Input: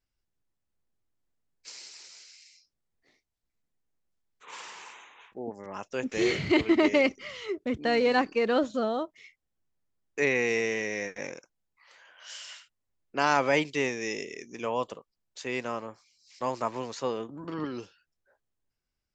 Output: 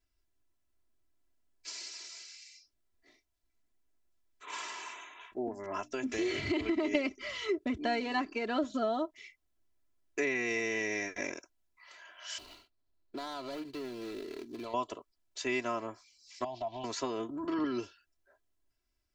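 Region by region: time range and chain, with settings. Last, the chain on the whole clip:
5.47–6.95 s: hum notches 60/120/180/240/300 Hz + compression, threshold -31 dBFS
12.38–14.74 s: median filter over 25 samples + peaking EQ 4.2 kHz +12 dB 0.4 oct + compression, threshold -39 dBFS
16.44–16.84 s: FFT filter 140 Hz 0 dB, 220 Hz -7 dB, 490 Hz -16 dB, 720 Hz +8 dB, 1.3 kHz -25 dB, 2.1 kHz -16 dB, 3.3 kHz +5 dB, 9.3 kHz -29 dB + compression 5:1, threshold -37 dBFS
whole clip: compression 4:1, threshold -31 dBFS; comb 3 ms, depth 81%

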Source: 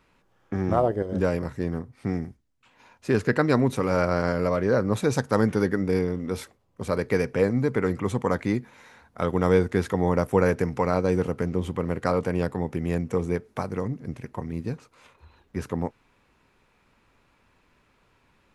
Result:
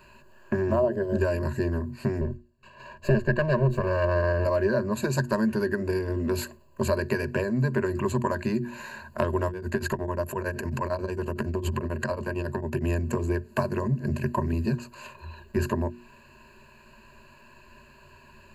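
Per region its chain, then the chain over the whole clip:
2.21–4.45 s: comb filter that takes the minimum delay 1.8 ms + low-pass 2.2 kHz 6 dB/octave + peaking EQ 210 Hz +5.5 dB 2.1 oct
9.48–12.84 s: compression 4:1, threshold -30 dBFS + tremolo of two beating tones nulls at 11 Hz
whole clip: hum notches 60/120/180/240/300/360 Hz; compression 6:1, threshold -32 dBFS; rippled EQ curve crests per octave 1.4, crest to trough 18 dB; trim +7 dB

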